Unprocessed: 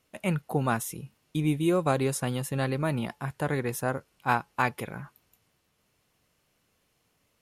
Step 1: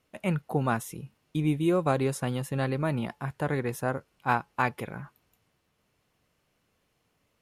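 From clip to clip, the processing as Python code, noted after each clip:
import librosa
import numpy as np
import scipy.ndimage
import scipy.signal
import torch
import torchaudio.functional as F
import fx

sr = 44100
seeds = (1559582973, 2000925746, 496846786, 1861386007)

y = fx.high_shelf(x, sr, hz=4000.0, db=-6.5)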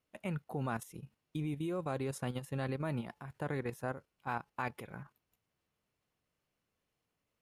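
y = fx.level_steps(x, sr, step_db=10)
y = y * librosa.db_to_amplitude(-5.5)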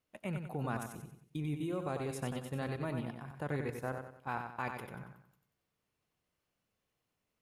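y = fx.echo_feedback(x, sr, ms=93, feedback_pct=39, wet_db=-6.0)
y = y * librosa.db_to_amplitude(-1.0)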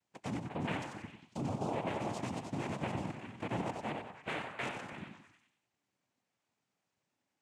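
y = fx.noise_vocoder(x, sr, seeds[0], bands=4)
y = fx.echo_stepped(y, sr, ms=100, hz=760.0, octaves=0.7, feedback_pct=70, wet_db=-6.5)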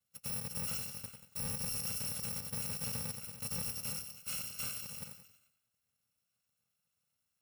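y = fx.bit_reversed(x, sr, seeds[1], block=128)
y = np.clip(y, -10.0 ** (-35.5 / 20.0), 10.0 ** (-35.5 / 20.0))
y = y * librosa.db_to_amplitude(1.0)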